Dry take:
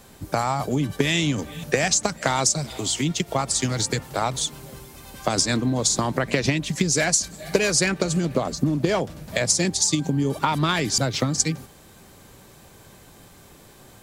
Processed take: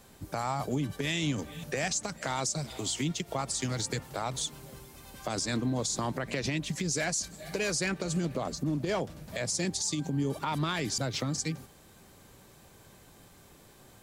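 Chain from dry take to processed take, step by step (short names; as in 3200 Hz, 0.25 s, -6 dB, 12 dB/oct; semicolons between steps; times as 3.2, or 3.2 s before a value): limiter -14.5 dBFS, peak gain reduction 8.5 dB; gain -7 dB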